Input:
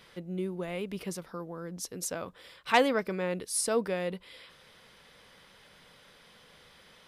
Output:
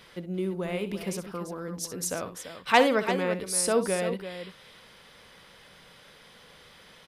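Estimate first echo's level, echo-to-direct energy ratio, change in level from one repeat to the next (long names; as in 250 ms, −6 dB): −12.0 dB, −8.0 dB, repeats not evenly spaced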